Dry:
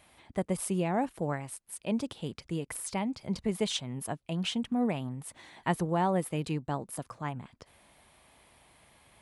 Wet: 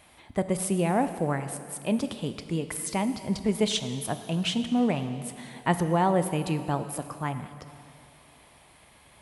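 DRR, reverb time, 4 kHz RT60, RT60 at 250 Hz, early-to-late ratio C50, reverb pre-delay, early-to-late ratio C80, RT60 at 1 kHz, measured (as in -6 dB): 9.0 dB, 2.5 s, 2.3 s, 2.6 s, 10.5 dB, 5 ms, 11.0 dB, 2.4 s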